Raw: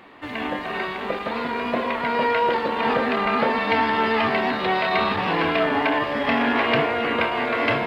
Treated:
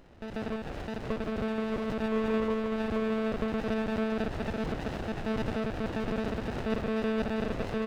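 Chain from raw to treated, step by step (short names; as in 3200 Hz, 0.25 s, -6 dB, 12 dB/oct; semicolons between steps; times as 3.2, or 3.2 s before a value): low shelf 170 Hz -10.5 dB; compressor 6:1, threshold -25 dBFS, peak gain reduction 8.5 dB; small resonant body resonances 480/1000 Hz, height 10 dB, ringing for 45 ms; flange 0.55 Hz, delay 2.5 ms, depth 10 ms, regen -48%; on a send: echo 0.692 s -5.5 dB; on the sum: monotone LPC vocoder at 8 kHz 220 Hz; running maximum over 33 samples; gain -3.5 dB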